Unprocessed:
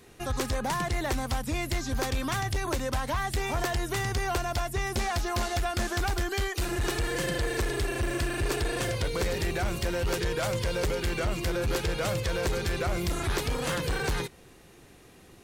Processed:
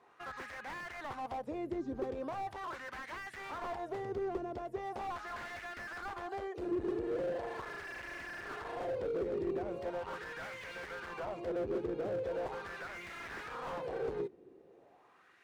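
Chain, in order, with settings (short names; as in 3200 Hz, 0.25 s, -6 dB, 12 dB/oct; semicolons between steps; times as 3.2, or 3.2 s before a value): wah 0.4 Hz 360–2000 Hz, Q 2.9; slew limiter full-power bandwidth 9 Hz; gain +2 dB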